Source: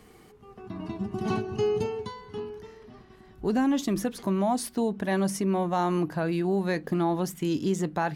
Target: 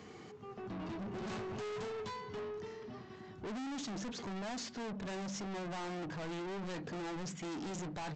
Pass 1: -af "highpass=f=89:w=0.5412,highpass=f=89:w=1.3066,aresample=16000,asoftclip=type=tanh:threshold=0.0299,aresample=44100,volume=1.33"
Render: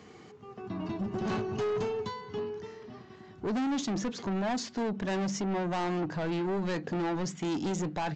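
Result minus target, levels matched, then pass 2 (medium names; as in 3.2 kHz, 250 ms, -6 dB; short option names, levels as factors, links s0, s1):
saturation: distortion -5 dB
-af "highpass=f=89:w=0.5412,highpass=f=89:w=1.3066,aresample=16000,asoftclip=type=tanh:threshold=0.0075,aresample=44100,volume=1.33"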